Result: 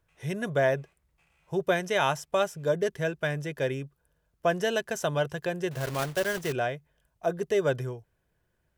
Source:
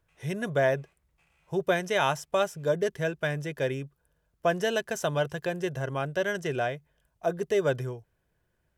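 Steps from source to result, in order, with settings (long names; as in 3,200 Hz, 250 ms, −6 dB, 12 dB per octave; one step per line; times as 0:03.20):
0:05.71–0:06.53: one scale factor per block 3 bits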